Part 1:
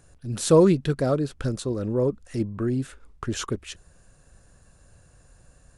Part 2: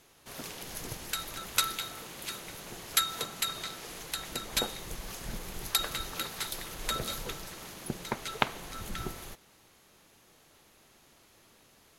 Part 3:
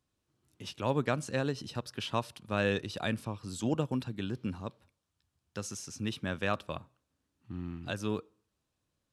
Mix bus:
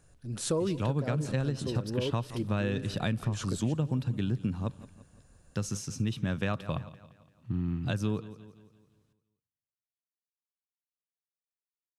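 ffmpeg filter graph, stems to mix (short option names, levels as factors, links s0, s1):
-filter_complex "[0:a]volume=0.473,asplit=2[s0][s1];[s1]volume=0.0841[s2];[2:a]equalizer=f=130:t=o:w=1.5:g=12,volume=1.33,asplit=2[s3][s4];[s4]volume=0.112[s5];[s2][s5]amix=inputs=2:normalize=0,aecho=0:1:171|342|513|684|855|1026|1197:1|0.47|0.221|0.104|0.0488|0.0229|0.0108[s6];[s0][s3][s6]amix=inputs=3:normalize=0,acompressor=threshold=0.0501:ratio=6"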